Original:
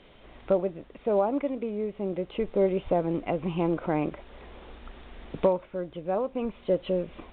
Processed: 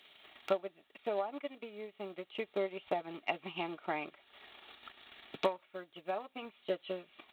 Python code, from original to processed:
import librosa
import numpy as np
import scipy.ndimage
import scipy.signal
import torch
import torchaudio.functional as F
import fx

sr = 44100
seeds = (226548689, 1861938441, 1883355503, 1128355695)

y = fx.transient(x, sr, attack_db=8, sustain_db=-8)
y = np.diff(y, prepend=0.0)
y = fx.notch_comb(y, sr, f0_hz=510.0)
y = F.gain(torch.from_numpy(y), 10.0).numpy()